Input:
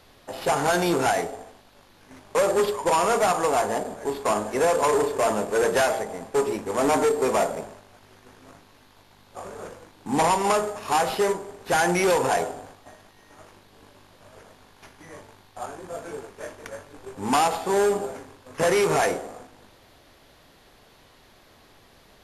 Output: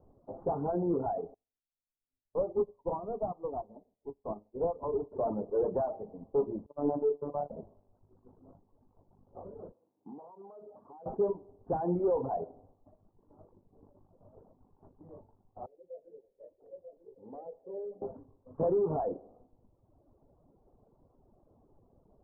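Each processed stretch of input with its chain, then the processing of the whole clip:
1.34–5.12 Chebyshev low-pass 1200 Hz, order 3 + low shelf 63 Hz +9 dB + upward expander 2.5:1, over -43 dBFS
6.66–7.5 gate -26 dBFS, range -26 dB + high shelf 4200 Hz +10 dB + robotiser 145 Hz
9.72–11.06 HPF 210 Hz + resonator 940 Hz, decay 0.21 s, mix 50% + compressor 16:1, threshold -36 dBFS
15.66–18.02 vocal tract filter e + notches 50/100/150/200/250/300 Hz + echo 0.939 s -3.5 dB
whole clip: Bessel low-pass 530 Hz, order 8; reverb removal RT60 1.2 s; gain -3.5 dB

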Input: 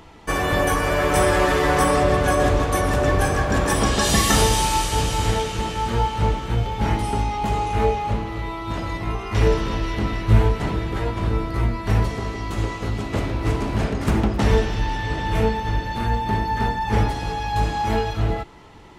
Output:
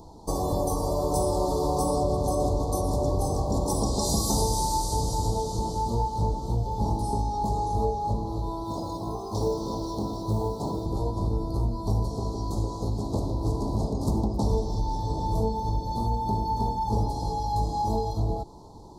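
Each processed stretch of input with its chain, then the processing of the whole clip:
8.64–10.86 HPF 220 Hz 6 dB/oct + modulation noise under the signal 34 dB
whole clip: elliptic band-stop 960–4300 Hz, stop band 40 dB; compressor 2:1, threshold -26 dBFS

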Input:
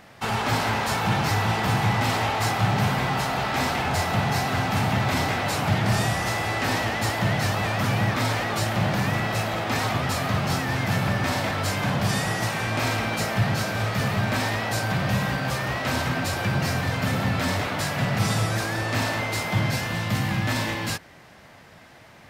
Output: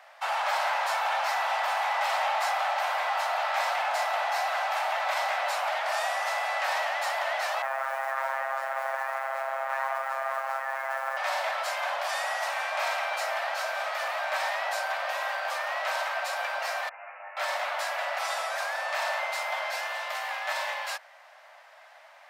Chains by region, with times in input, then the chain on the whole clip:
7.62–11.17 robotiser 134 Hz + resonant high shelf 2500 Hz -14 dB, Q 1.5 + modulation noise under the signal 22 dB
16.89–17.37 resonator 100 Hz, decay 0.82 s, mix 90% + careless resampling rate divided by 8×, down none, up filtered
whole clip: steep high-pass 570 Hz 72 dB/oct; high shelf 3100 Hz -9 dB

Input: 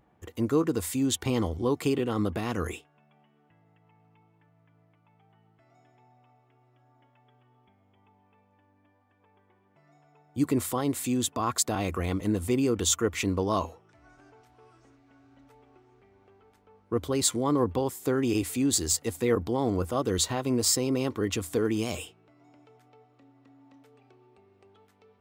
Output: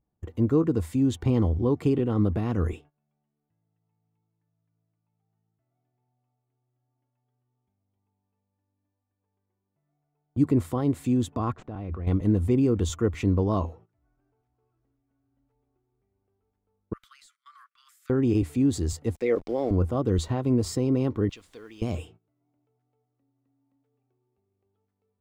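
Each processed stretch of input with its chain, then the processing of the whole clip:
11.52–12.07 median filter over 9 samples + level quantiser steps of 13 dB + LPF 4200 Hz
16.93–18.1 steep high-pass 1200 Hz 96 dB/oct + compressor 5:1, threshold -44 dBFS + hard clip -36 dBFS
19.15–19.71 speaker cabinet 370–8400 Hz, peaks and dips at 570 Hz +8 dB, 980 Hz -8 dB, 1500 Hz -3 dB, 2200 Hz +10 dB, 5300 Hz +10 dB + sample gate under -42 dBFS
21.29–21.82 band-pass 3600 Hz, Q 1.2 + requantised 10-bit, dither triangular
whole clip: gate -51 dBFS, range -20 dB; tilt -3.5 dB/oct; gain -3 dB

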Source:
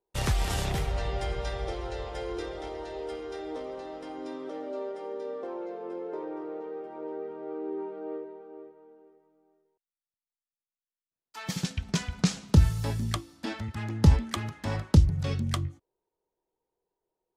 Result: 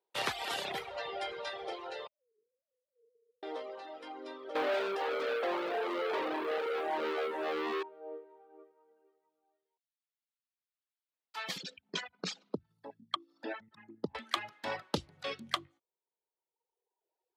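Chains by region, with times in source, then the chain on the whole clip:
2.07–3.43 sine-wave speech + inverse Chebyshev low-pass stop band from 900 Hz, stop band 70 dB
4.55–7.83 bell 1400 Hz -14.5 dB 0.39 oct + sample leveller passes 5
11.58–14.15 formant sharpening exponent 2 + HPF 200 Hz + upward compressor, threshold -44 dBFS
whole clip: reverb removal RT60 1.5 s; HPF 490 Hz 12 dB/oct; resonant high shelf 5000 Hz -7 dB, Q 1.5; gain +1 dB

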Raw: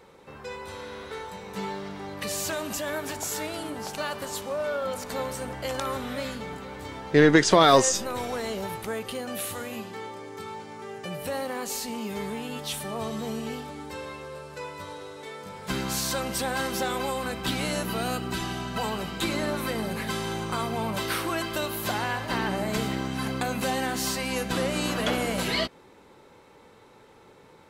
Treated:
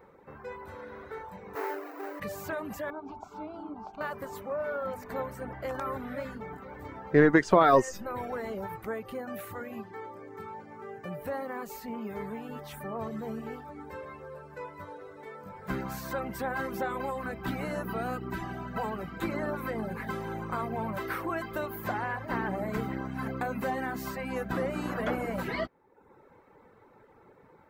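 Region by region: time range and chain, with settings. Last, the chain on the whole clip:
1.55–2.2 half-waves squared off + brick-wall FIR high-pass 270 Hz + notch 3400 Hz, Q 10
2.9–4.01 air absorption 190 m + fixed phaser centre 490 Hz, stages 6
whole clip: reverb removal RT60 0.75 s; band shelf 5600 Hz -15.5 dB 2.4 oct; gain -2 dB

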